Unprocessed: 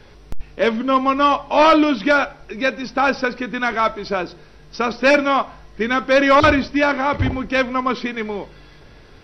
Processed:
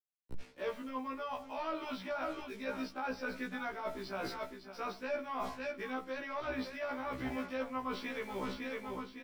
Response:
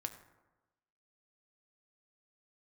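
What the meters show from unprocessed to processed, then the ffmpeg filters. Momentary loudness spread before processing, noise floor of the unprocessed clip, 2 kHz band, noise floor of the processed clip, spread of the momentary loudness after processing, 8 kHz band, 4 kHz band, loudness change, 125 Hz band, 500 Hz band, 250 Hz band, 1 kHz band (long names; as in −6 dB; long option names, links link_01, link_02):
12 LU, −45 dBFS, −22.0 dB, −57 dBFS, 3 LU, can't be measured, −21.5 dB, −22.0 dB, −23.0 dB, −20.5 dB, −21.0 dB, −22.0 dB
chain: -filter_complex "[0:a]agate=range=-33dB:threshold=-32dB:ratio=3:detection=peak,acrusher=bits=6:mix=0:aa=0.5,asplit=2[link_01][link_02];[link_02]aecho=0:1:557|1114|1671:0.141|0.0438|0.0136[link_03];[link_01][link_03]amix=inputs=2:normalize=0,acrossover=split=160|520|1100[link_04][link_05][link_06][link_07];[link_04]acompressor=threshold=-36dB:ratio=4[link_08];[link_05]acompressor=threshold=-29dB:ratio=4[link_09];[link_06]acompressor=threshold=-19dB:ratio=4[link_10];[link_07]acompressor=threshold=-27dB:ratio=4[link_11];[link_08][link_09][link_10][link_11]amix=inputs=4:normalize=0,bandreject=frequency=50:width_type=h:width=6,bandreject=frequency=100:width_type=h:width=6,bandreject=frequency=150:width_type=h:width=6,bandreject=frequency=200:width_type=h:width=6,areverse,acompressor=threshold=-39dB:ratio=10,areverse,afftfilt=real='re*1.73*eq(mod(b,3),0)':imag='im*1.73*eq(mod(b,3),0)':win_size=2048:overlap=0.75,volume=4.5dB"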